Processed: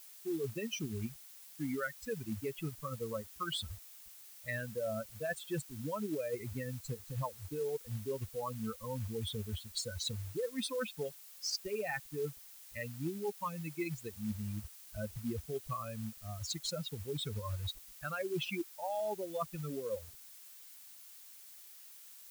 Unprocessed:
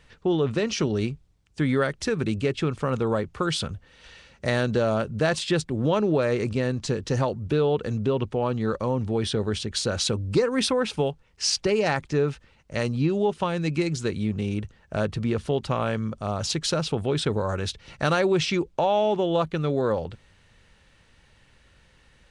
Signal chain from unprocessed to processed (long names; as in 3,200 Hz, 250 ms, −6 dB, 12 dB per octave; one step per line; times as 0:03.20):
spectral dynamics exaggerated over time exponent 3
dynamic equaliser 160 Hz, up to −4 dB, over −47 dBFS, Q 3.9
reversed playback
downward compressor 8 to 1, threshold −36 dBFS, peak gain reduction 16 dB
reversed playback
log-companded quantiser 6 bits
background noise blue −56 dBFS
level +1.5 dB